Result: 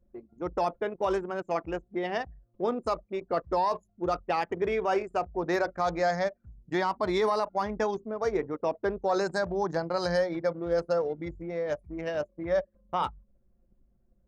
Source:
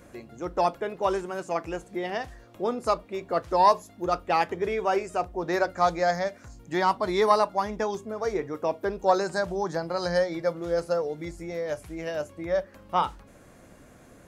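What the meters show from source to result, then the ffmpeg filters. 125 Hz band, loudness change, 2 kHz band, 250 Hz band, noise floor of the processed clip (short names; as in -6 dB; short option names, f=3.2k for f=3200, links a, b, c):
-1.5 dB, -2.5 dB, -2.0 dB, -1.0 dB, -69 dBFS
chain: -af "alimiter=limit=-18dB:level=0:latency=1:release=38,anlmdn=2.51"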